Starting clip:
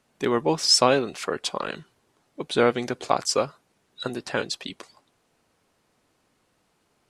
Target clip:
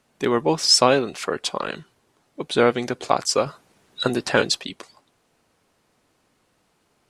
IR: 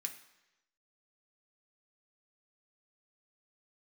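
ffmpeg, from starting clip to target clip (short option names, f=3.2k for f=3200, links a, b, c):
-filter_complex "[0:a]asettb=1/sr,asplit=3[a][b][c];[a]atrim=end=3.464[d];[b]atrim=start=3.46:end=4.6,asetpts=PTS-STARTPTS,afade=t=in:d=0.004:c=qsin,afade=t=out:st=1.136:d=0.004:c=qsin,acontrast=54[e];[c]atrim=start=4.596[f];[d][e]acrossfade=d=0.004:c1=hsin:c2=qsin[g];[g][f]acrossfade=d=0.004:c1=qsin:c2=hsin,volume=2.5dB"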